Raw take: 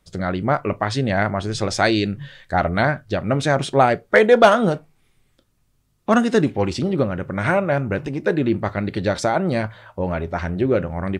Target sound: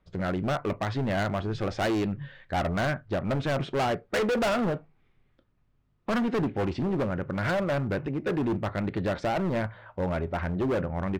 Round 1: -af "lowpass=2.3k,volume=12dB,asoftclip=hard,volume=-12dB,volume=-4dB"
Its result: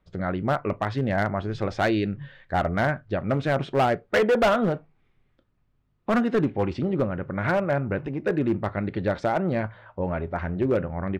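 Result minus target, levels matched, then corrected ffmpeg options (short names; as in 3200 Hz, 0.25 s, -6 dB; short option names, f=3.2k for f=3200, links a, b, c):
overloaded stage: distortion -7 dB
-af "lowpass=2.3k,volume=19.5dB,asoftclip=hard,volume=-19.5dB,volume=-4dB"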